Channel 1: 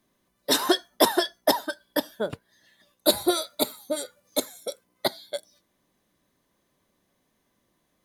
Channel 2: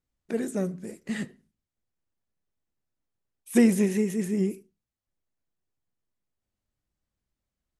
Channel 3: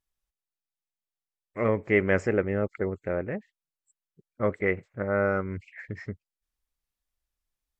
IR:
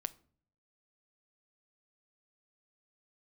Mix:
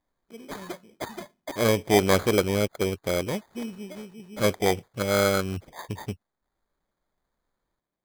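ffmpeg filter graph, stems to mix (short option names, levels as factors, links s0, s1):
-filter_complex "[0:a]volume=0.141,asplit=2[s0][s1];[s1]volume=0.188[s2];[1:a]equalizer=f=5200:w=0.53:g=-11.5,volume=0.168[s3];[2:a]equalizer=f=6300:w=2.9:g=12,volume=1.41,asplit=2[s4][s5];[s5]apad=whole_len=354747[s6];[s0][s6]sidechaincompress=threshold=0.00631:ratio=4:attack=16:release=427[s7];[3:a]atrim=start_sample=2205[s8];[s2][s8]afir=irnorm=-1:irlink=0[s9];[s7][s3][s4][s9]amix=inputs=4:normalize=0,acrusher=samples=16:mix=1:aa=0.000001"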